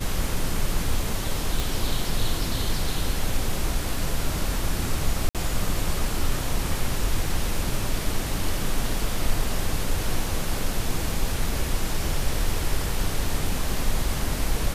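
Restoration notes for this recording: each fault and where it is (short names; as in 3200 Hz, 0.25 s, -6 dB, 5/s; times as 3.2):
1.6 pop
5.29–5.35 gap 57 ms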